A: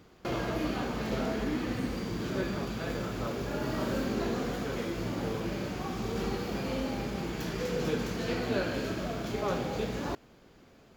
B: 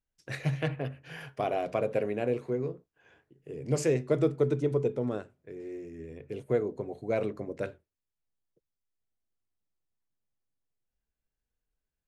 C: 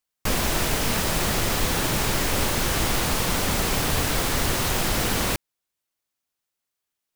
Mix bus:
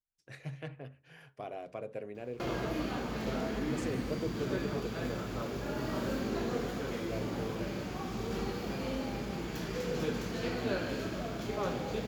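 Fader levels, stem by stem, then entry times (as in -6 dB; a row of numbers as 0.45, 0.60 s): -3.0 dB, -12.0 dB, off; 2.15 s, 0.00 s, off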